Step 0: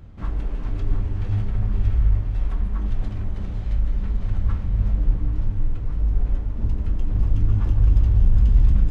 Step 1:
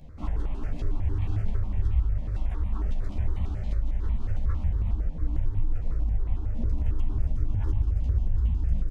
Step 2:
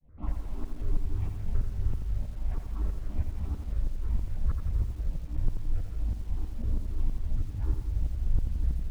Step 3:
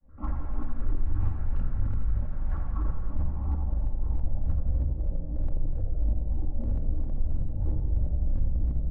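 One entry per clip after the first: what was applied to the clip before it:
downward compressor, threshold −19 dBFS, peak gain reduction 9.5 dB; double-tracking delay 13 ms −3.5 dB; step-sequenced phaser 11 Hz 360–1,500 Hz
shaped tremolo saw up 3.1 Hz, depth 100%; high-frequency loss of the air 490 metres; feedback echo at a low word length 85 ms, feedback 55%, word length 9 bits, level −6 dB
low-pass filter sweep 1,400 Hz → 590 Hz, 0:02.67–0:04.74; hard clipping −24.5 dBFS, distortion −11 dB; rectangular room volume 3,400 cubic metres, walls furnished, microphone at 2.3 metres

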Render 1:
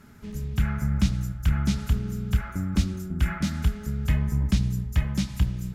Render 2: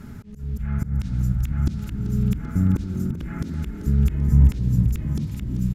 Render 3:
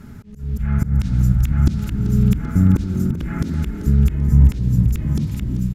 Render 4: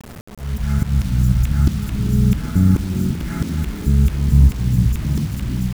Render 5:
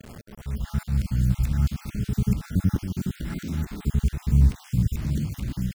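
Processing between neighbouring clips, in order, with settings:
volume swells 472 ms; low-shelf EQ 330 Hz +11 dB; echo with shifted repeats 388 ms, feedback 58%, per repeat +40 Hz, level −12 dB; level +4.5 dB
automatic gain control gain up to 7 dB
bit-depth reduction 6 bits, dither none
time-frequency cells dropped at random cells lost 34%; level −6 dB

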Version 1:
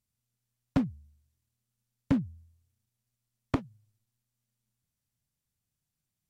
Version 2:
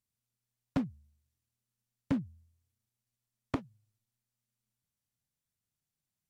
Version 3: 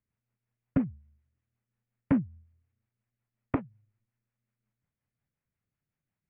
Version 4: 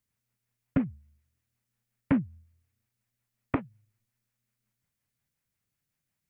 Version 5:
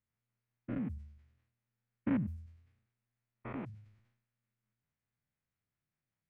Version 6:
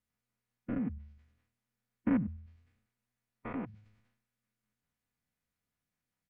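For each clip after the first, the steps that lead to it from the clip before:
low-shelf EQ 120 Hz −6 dB; level −3.5 dB
Butterworth low-pass 2,400 Hz 36 dB per octave; rotating-speaker cabinet horn 5.5 Hz; level +7 dB
high-shelf EQ 2,300 Hz +11 dB
spectrum averaged block by block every 100 ms; low-pass that shuts in the quiet parts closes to 2,300 Hz, open at −31 dBFS; level that may fall only so fast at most 76 dB per second; level −2.5 dB
comb filter 4.1 ms, depth 45%; harmonic and percussive parts rebalanced percussive +4 dB; treble cut that deepens with the level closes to 2,300 Hz, closed at −34.5 dBFS

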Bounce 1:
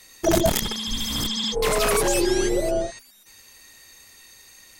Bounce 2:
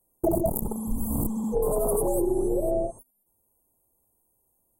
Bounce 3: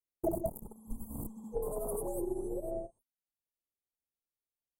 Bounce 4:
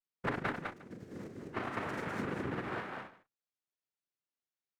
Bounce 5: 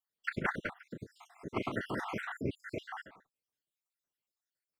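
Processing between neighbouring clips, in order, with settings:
inverse Chebyshev band-stop filter 1,700–5,400 Hz, stop band 50 dB; noise gate −43 dBFS, range −19 dB; downward compressor 6 to 1, threshold −26 dBFS, peak gain reduction 10.5 dB; level +4.5 dB
expander for the loud parts 2.5 to 1, over −36 dBFS; level −7 dB
cochlear-implant simulation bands 3; multi-tap delay 41/204/234/356 ms −8.5/−3.5/−12.5/−20 dB; windowed peak hold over 3 samples; level −3 dB
time-frequency cells dropped at random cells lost 65%; level +5 dB

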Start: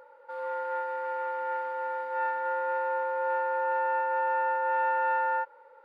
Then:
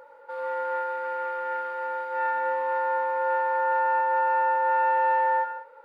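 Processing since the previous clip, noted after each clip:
reverb whose tail is shaped and stops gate 220 ms flat, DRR 5.5 dB
level +3.5 dB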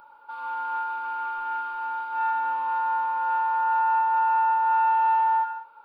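phaser with its sweep stopped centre 1,900 Hz, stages 6
level +3.5 dB

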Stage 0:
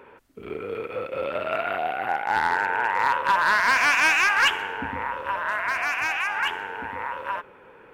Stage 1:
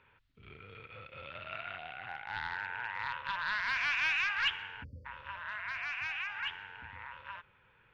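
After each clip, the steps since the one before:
drawn EQ curve 120 Hz 0 dB, 350 Hz −24 dB, 1,500 Hz −8 dB, 3,700 Hz −1 dB, 9,500 Hz −29 dB
time-frequency box erased 0:04.83–0:05.06, 620–4,400 Hz
parametric band 350 Hz +5.5 dB 0.25 octaves
level −5.5 dB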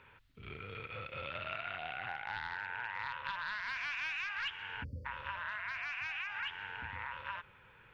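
downward compressor 6 to 1, threshold −42 dBFS, peak gain reduction 14.5 dB
level +5.5 dB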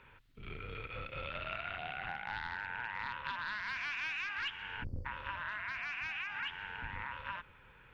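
sub-octave generator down 2 octaves, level +2 dB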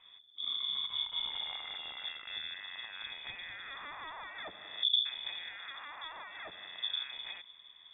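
low shelf with overshoot 190 Hz +13 dB, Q 3
voice inversion scrambler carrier 3,500 Hz
low-pass that shuts in the quiet parts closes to 2,700 Hz, open at −25.5 dBFS
level −6.5 dB

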